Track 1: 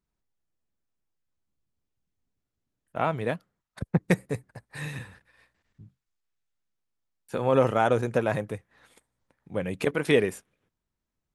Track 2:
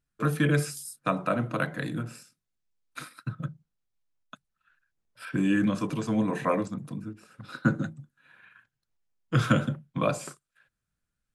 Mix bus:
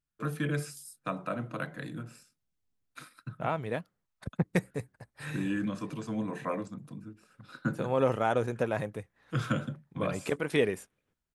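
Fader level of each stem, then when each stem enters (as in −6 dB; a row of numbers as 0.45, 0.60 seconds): −5.0, −7.5 decibels; 0.45, 0.00 seconds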